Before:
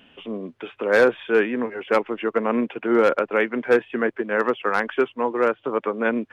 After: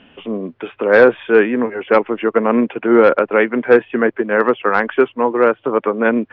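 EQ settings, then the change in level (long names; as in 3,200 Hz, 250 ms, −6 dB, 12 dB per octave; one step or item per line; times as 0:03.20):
high-frequency loss of the air 270 metres
+8.0 dB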